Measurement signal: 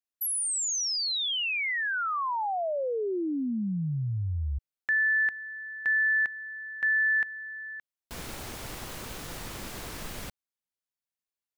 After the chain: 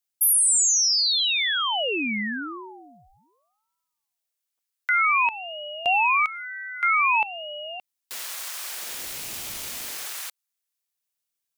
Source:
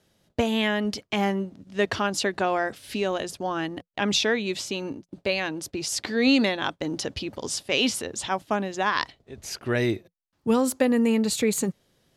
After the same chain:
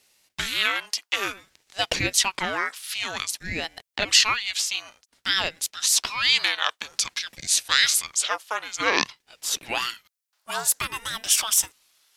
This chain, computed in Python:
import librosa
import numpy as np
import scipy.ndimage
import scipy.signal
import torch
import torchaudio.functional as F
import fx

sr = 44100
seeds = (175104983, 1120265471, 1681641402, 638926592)

y = scipy.signal.sosfilt(scipy.signal.butter(4, 960.0, 'highpass', fs=sr, output='sos'), x)
y = fx.high_shelf(y, sr, hz=3900.0, db=8.5)
y = fx.ring_lfo(y, sr, carrier_hz=680.0, swing_pct=70, hz=0.53)
y = y * 10.0 ** (6.0 / 20.0)